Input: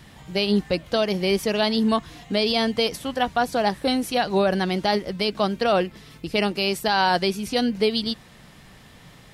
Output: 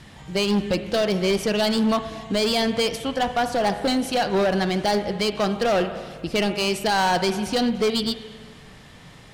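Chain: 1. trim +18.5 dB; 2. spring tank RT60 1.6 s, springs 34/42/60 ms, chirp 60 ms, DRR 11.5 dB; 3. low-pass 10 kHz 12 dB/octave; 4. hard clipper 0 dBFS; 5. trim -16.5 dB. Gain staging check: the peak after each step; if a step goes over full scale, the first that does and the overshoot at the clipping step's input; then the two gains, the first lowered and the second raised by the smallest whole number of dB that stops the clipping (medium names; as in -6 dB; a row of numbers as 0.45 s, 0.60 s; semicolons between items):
+8.5 dBFS, +9.5 dBFS, +9.5 dBFS, 0.0 dBFS, -16.5 dBFS; step 1, 9.5 dB; step 1 +8.5 dB, step 5 -6.5 dB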